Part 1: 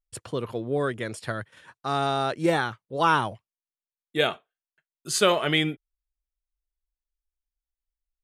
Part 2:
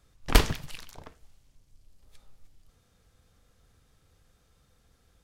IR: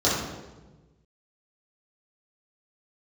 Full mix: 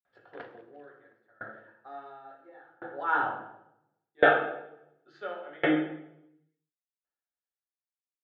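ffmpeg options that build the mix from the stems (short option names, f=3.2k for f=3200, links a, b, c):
-filter_complex "[0:a]aecho=1:1:2.3:0.4,volume=-3.5dB,afade=t=in:st=3.03:d=0.2:silence=0.251189,asplit=2[a][b];[b]volume=-9dB[c];[1:a]acompressor=threshold=-41dB:ratio=1.5,adelay=50,volume=-5.5dB,asplit=2[d][e];[e]volume=-21dB[f];[2:a]atrim=start_sample=2205[g];[c][f]amix=inputs=2:normalize=0[h];[h][g]afir=irnorm=-1:irlink=0[i];[a][d][i]amix=inputs=3:normalize=0,highpass=330,equalizer=f=420:t=q:w=4:g=-8,equalizer=f=720:t=q:w=4:g=5,equalizer=f=1.1k:t=q:w=4:g=-6,equalizer=f=1.6k:t=q:w=4:g=10,equalizer=f=2.4k:t=q:w=4:g=-5,lowpass=f=2.6k:w=0.5412,lowpass=f=2.6k:w=1.3066,aeval=exprs='val(0)*pow(10,-30*if(lt(mod(0.71*n/s,1),2*abs(0.71)/1000),1-mod(0.71*n/s,1)/(2*abs(0.71)/1000),(mod(0.71*n/s,1)-2*abs(0.71)/1000)/(1-2*abs(0.71)/1000))/20)':c=same"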